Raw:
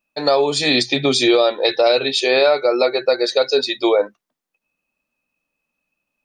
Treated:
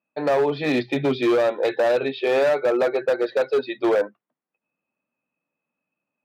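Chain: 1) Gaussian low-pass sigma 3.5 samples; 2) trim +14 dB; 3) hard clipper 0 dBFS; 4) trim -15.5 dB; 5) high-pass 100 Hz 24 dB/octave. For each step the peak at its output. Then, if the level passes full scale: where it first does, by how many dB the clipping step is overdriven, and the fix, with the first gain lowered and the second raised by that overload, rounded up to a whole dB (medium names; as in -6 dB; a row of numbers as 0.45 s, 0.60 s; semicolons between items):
-6.0 dBFS, +8.0 dBFS, 0.0 dBFS, -15.5 dBFS, -11.0 dBFS; step 2, 8.0 dB; step 2 +6 dB, step 4 -7.5 dB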